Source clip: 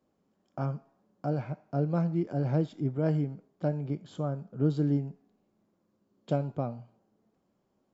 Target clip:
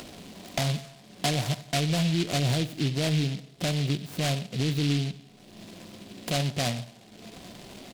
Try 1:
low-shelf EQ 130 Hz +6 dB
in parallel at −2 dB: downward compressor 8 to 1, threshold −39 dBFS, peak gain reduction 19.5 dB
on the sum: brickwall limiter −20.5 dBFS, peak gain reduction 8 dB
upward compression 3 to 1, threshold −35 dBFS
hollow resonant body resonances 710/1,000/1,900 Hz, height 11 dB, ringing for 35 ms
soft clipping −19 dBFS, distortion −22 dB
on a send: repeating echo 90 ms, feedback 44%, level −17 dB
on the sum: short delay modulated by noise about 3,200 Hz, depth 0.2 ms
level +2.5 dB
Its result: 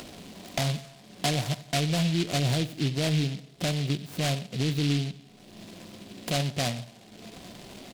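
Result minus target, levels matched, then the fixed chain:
downward compressor: peak gain reduction +8 dB
low-shelf EQ 130 Hz +6 dB
in parallel at −2 dB: downward compressor 8 to 1, threshold −30 dBFS, peak gain reduction 11.5 dB
on the sum: brickwall limiter −20.5 dBFS, peak gain reduction 9 dB
upward compression 3 to 1, threshold −35 dBFS
hollow resonant body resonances 710/1,000/1,900 Hz, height 11 dB, ringing for 35 ms
soft clipping −19 dBFS, distortion −22 dB
on a send: repeating echo 90 ms, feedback 44%, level −17 dB
on the sum: short delay modulated by noise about 3,200 Hz, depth 0.2 ms
level +2.5 dB

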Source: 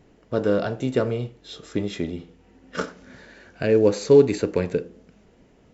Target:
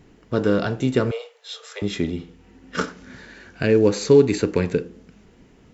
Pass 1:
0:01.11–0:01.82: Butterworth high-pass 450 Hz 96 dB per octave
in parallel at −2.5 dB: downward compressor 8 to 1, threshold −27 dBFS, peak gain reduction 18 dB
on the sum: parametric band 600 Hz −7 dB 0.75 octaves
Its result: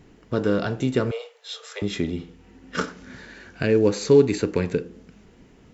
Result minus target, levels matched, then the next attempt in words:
downward compressor: peak gain reduction +9.5 dB
0:01.11–0:01.82: Butterworth high-pass 450 Hz 96 dB per octave
in parallel at −2.5 dB: downward compressor 8 to 1, threshold −16 dBFS, peak gain reduction 8.5 dB
on the sum: parametric band 600 Hz −7 dB 0.75 octaves

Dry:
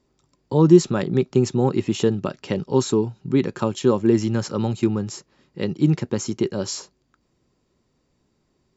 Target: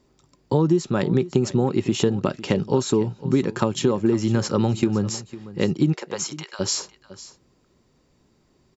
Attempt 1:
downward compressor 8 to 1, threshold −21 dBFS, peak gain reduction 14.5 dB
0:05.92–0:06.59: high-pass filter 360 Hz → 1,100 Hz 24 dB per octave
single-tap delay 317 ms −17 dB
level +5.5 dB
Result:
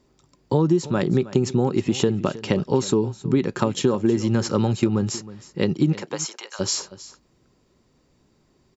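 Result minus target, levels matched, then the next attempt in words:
echo 187 ms early
downward compressor 8 to 1, threshold −21 dBFS, peak gain reduction 14.5 dB
0:05.92–0:06.59: high-pass filter 360 Hz → 1,100 Hz 24 dB per octave
single-tap delay 504 ms −17 dB
level +5.5 dB

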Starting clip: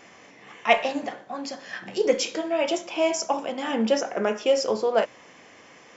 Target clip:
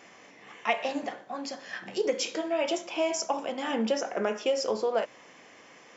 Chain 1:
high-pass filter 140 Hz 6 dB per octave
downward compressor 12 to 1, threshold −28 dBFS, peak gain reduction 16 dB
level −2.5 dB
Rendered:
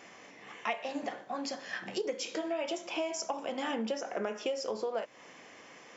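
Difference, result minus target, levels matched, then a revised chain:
downward compressor: peak gain reduction +8 dB
high-pass filter 140 Hz 6 dB per octave
downward compressor 12 to 1, threshold −19.5 dBFS, peak gain reduction 8.5 dB
level −2.5 dB

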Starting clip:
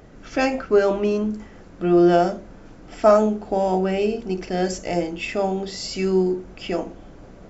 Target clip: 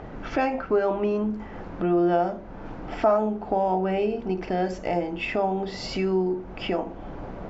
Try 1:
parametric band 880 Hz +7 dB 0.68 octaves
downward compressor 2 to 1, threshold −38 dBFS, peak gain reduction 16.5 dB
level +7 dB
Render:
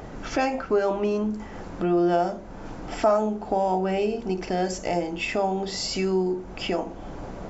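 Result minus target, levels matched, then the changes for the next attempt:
4,000 Hz band +4.5 dB
add first: low-pass filter 3,000 Hz 12 dB per octave

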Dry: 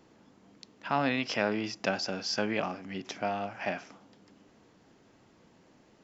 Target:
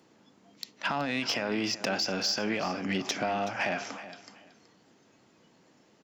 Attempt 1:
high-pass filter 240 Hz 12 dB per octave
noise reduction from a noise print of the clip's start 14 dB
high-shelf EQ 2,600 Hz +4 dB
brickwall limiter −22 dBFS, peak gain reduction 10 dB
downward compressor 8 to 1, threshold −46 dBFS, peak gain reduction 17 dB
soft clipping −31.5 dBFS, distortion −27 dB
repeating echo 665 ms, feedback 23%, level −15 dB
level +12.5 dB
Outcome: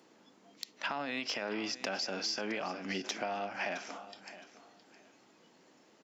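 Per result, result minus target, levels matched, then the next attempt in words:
echo 290 ms late; downward compressor: peak gain reduction +7 dB; 125 Hz band −5.0 dB
high-pass filter 240 Hz 12 dB per octave
noise reduction from a noise print of the clip's start 14 dB
high-shelf EQ 2,600 Hz +4 dB
brickwall limiter −22 dBFS, peak gain reduction 10 dB
downward compressor 8 to 1, threshold −38 dBFS, peak gain reduction 10 dB
soft clipping −31.5 dBFS, distortion −20 dB
repeating echo 375 ms, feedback 23%, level −15 dB
level +12.5 dB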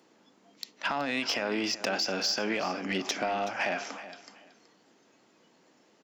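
125 Hz band −5.0 dB
high-pass filter 110 Hz 12 dB per octave
noise reduction from a noise print of the clip's start 14 dB
high-shelf EQ 2,600 Hz +4 dB
brickwall limiter −22 dBFS, peak gain reduction 10.5 dB
downward compressor 8 to 1, threshold −38 dBFS, peak gain reduction 10.5 dB
soft clipping −31.5 dBFS, distortion −20 dB
repeating echo 375 ms, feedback 23%, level −15 dB
level +12.5 dB

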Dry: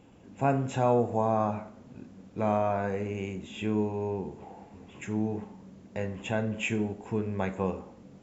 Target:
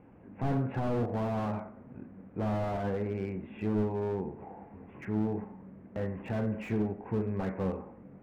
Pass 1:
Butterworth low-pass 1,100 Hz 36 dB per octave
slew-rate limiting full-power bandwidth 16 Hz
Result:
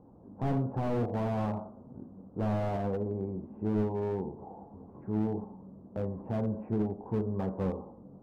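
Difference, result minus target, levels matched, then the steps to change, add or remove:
2,000 Hz band −5.0 dB
change: Butterworth low-pass 2,200 Hz 36 dB per octave

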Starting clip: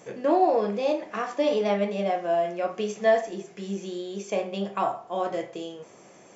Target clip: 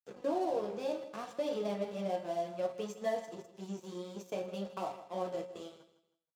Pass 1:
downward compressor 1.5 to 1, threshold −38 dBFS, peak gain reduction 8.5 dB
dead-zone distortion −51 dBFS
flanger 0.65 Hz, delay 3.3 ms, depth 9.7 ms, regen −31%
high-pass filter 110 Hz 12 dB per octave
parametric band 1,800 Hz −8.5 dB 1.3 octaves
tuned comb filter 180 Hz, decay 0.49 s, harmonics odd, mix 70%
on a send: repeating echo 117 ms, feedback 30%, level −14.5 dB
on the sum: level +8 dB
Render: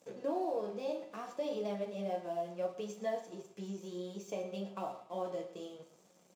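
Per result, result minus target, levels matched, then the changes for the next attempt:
dead-zone distortion: distortion −8 dB; echo 42 ms early; downward compressor: peak gain reduction +3 dB
change: dead-zone distortion −39 dBFS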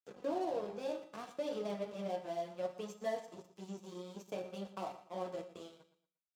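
echo 42 ms early; downward compressor: peak gain reduction +3 dB
change: repeating echo 159 ms, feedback 30%, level −14.5 dB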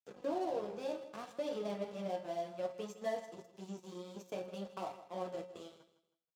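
downward compressor: peak gain reduction +3 dB
change: downward compressor 1.5 to 1, threshold −29 dBFS, peak gain reduction 5.5 dB

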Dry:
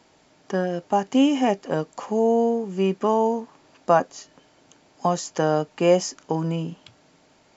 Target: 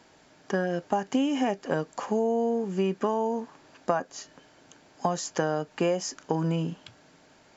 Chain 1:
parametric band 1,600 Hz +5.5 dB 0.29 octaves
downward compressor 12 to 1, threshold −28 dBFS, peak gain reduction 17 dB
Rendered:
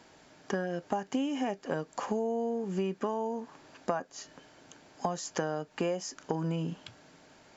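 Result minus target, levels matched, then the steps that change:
downward compressor: peak gain reduction +6 dB
change: downward compressor 12 to 1, threshold −21.5 dBFS, peak gain reduction 11 dB

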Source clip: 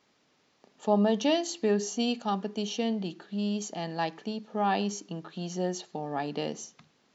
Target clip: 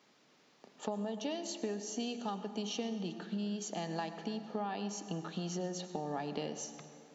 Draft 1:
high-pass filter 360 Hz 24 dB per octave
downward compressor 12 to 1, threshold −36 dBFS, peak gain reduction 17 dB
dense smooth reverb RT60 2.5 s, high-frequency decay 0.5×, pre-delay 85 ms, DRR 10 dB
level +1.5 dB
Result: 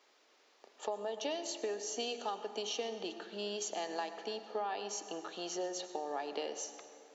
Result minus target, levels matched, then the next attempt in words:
125 Hz band −18.0 dB
high-pass filter 120 Hz 24 dB per octave
downward compressor 12 to 1, threshold −36 dBFS, peak gain reduction 18 dB
dense smooth reverb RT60 2.5 s, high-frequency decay 0.5×, pre-delay 85 ms, DRR 10 dB
level +1.5 dB

